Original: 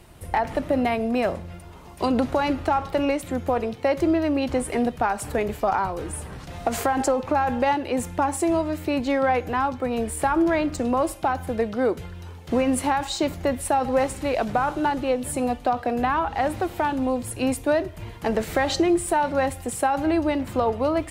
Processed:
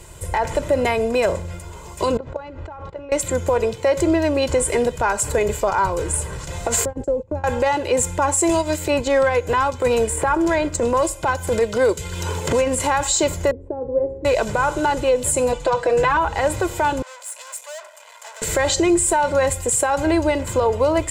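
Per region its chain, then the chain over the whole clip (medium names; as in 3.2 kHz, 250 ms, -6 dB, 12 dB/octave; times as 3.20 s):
2.17–3.12 s: level held to a coarse grid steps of 19 dB + tape spacing loss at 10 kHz 31 dB
6.85–7.44 s: FFT filter 220 Hz 0 dB, 350 Hz -5 dB, 530 Hz -7 dB, 1.1 kHz -23 dB + gate -33 dBFS, range -19 dB
8.49–12.80 s: transient shaper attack -11 dB, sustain -6 dB + three bands compressed up and down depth 100%
13.51–14.25 s: resonant low-pass 400 Hz, resonance Q 3.2 + feedback comb 270 Hz, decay 0.66 s, mix 70%
15.52–16.17 s: low-pass 8.4 kHz + comb 6 ms, depth 84%
17.02–18.42 s: valve stage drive 39 dB, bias 0.65 + elliptic high-pass 600 Hz, stop band 50 dB
whole clip: peaking EQ 7.4 kHz +15 dB 0.44 oct; comb 2 ms, depth 61%; peak limiter -14.5 dBFS; trim +5 dB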